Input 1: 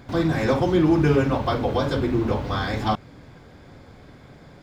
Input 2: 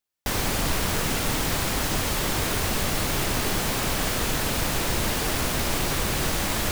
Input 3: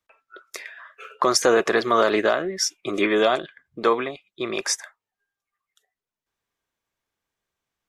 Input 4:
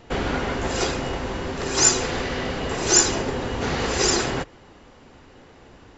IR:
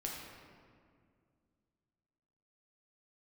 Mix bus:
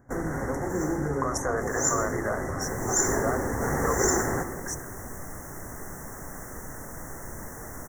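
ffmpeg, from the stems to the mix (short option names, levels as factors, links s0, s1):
-filter_complex "[0:a]volume=0.266,asplit=2[s0][s1];[1:a]adelay=2350,volume=0.158,asplit=2[s2][s3];[s3]volume=0.447[s4];[2:a]highpass=520,volume=0.355[s5];[3:a]acrusher=bits=4:mix=0:aa=0.5,volume=0.562,asplit=2[s6][s7];[s7]volume=0.531[s8];[s1]apad=whole_len=263294[s9];[s6][s9]sidechaincompress=threshold=0.00562:ratio=8:attack=16:release=136[s10];[4:a]atrim=start_sample=2205[s11];[s4][s8]amix=inputs=2:normalize=0[s12];[s12][s11]afir=irnorm=-1:irlink=0[s13];[s0][s2][s5][s10][s13]amix=inputs=5:normalize=0,asuperstop=centerf=3400:order=20:qfactor=0.94"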